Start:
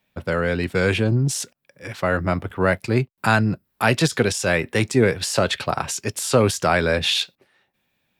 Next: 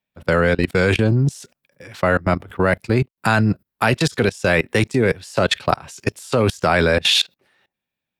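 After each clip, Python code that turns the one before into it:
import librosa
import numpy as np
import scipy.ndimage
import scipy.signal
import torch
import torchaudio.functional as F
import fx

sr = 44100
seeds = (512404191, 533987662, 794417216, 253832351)

y = fx.level_steps(x, sr, step_db=23)
y = y * 10.0 ** (7.5 / 20.0)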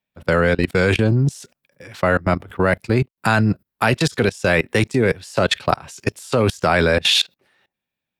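y = x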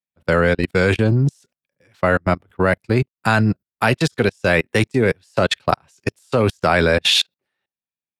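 y = fx.upward_expand(x, sr, threshold_db=-27.0, expansion=2.5)
y = y * 10.0 ** (2.0 / 20.0)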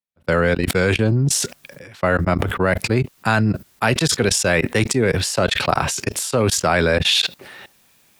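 y = fx.sustainer(x, sr, db_per_s=40.0)
y = y * 10.0 ** (-1.5 / 20.0)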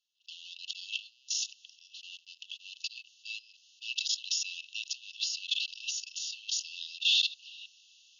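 y = fx.power_curve(x, sr, exponent=0.7)
y = fx.brickwall_bandpass(y, sr, low_hz=2600.0, high_hz=7000.0)
y = fx.high_shelf(y, sr, hz=5300.0, db=-10.0)
y = y * 10.0 ** (-8.5 / 20.0)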